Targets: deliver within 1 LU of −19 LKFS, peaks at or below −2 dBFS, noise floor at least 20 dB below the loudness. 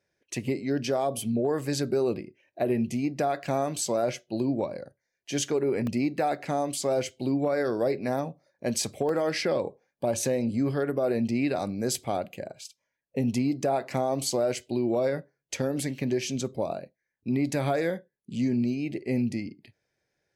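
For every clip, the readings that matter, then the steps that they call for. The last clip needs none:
number of dropouts 2; longest dropout 1.7 ms; integrated loudness −28.5 LKFS; sample peak −14.0 dBFS; target loudness −19.0 LKFS
→ repair the gap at 0:05.87/0:09.09, 1.7 ms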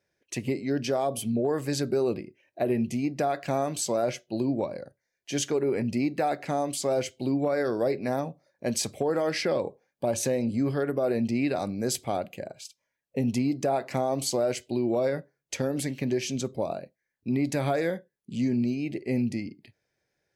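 number of dropouts 0; integrated loudness −28.5 LKFS; sample peak −14.0 dBFS; target loudness −19.0 LKFS
→ level +9.5 dB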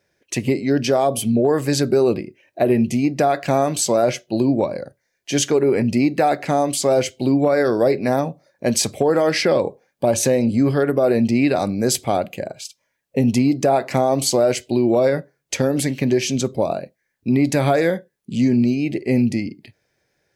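integrated loudness −19.0 LKFS; sample peak −4.5 dBFS; background noise floor −73 dBFS

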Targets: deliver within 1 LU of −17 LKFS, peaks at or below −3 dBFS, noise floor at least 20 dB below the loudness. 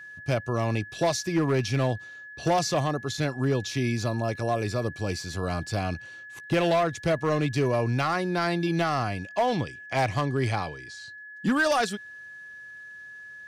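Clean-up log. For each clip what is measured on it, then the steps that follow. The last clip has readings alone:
share of clipped samples 1.3%; peaks flattened at −18.0 dBFS; interfering tone 1,700 Hz; level of the tone −41 dBFS; integrated loudness −27.0 LKFS; sample peak −18.0 dBFS; target loudness −17.0 LKFS
→ clipped peaks rebuilt −18 dBFS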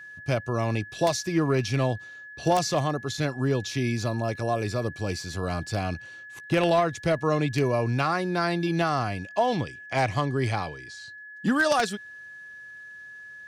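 share of clipped samples 0.0%; interfering tone 1,700 Hz; level of the tone −41 dBFS
→ notch filter 1,700 Hz, Q 30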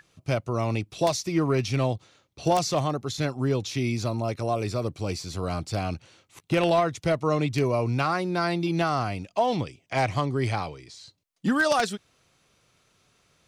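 interfering tone none found; integrated loudness −26.5 LKFS; sample peak −9.0 dBFS; target loudness −17.0 LKFS
→ level +9.5 dB
brickwall limiter −3 dBFS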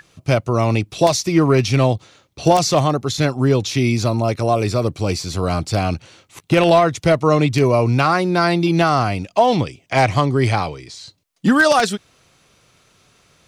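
integrated loudness −17.5 LKFS; sample peak −3.0 dBFS; background noise floor −58 dBFS

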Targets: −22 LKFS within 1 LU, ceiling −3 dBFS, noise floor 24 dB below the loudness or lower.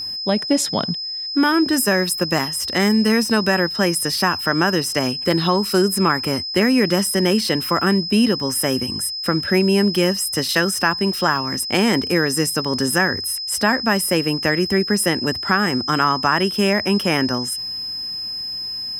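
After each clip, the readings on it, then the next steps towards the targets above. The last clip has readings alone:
interfering tone 5,100 Hz; level of the tone −25 dBFS; integrated loudness −18.5 LKFS; sample peak −2.0 dBFS; target loudness −22.0 LKFS
→ notch filter 5,100 Hz, Q 30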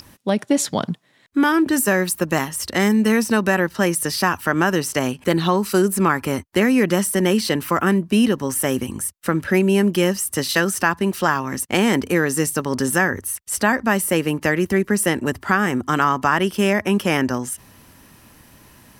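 interfering tone none found; integrated loudness −19.5 LKFS; sample peak −3.0 dBFS; target loudness −22.0 LKFS
→ level −2.5 dB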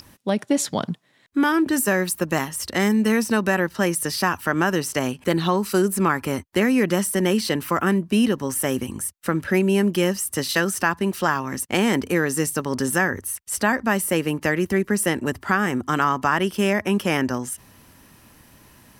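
integrated loudness −22.0 LKFS; sample peak −5.5 dBFS; background noise floor −54 dBFS

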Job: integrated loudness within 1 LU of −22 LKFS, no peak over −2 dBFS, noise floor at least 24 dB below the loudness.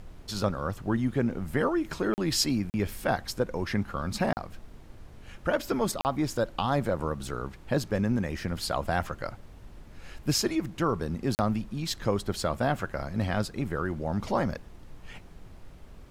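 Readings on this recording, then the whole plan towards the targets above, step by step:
number of dropouts 5; longest dropout 39 ms; background noise floor −49 dBFS; target noise floor −54 dBFS; integrated loudness −30.0 LKFS; sample peak −12.5 dBFS; target loudness −22.0 LKFS
→ repair the gap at 0:02.14/0:02.70/0:04.33/0:06.01/0:11.35, 39 ms
noise reduction from a noise print 6 dB
level +8 dB

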